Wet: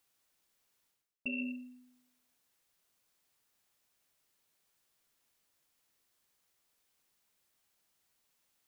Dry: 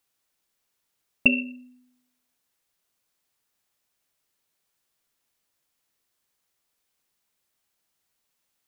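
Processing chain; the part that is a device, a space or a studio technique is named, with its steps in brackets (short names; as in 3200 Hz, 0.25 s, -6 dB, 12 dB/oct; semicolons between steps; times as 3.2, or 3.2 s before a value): compression on the reversed sound (reverse; compressor 20:1, threshold -35 dBFS, peak gain reduction 24.5 dB; reverse)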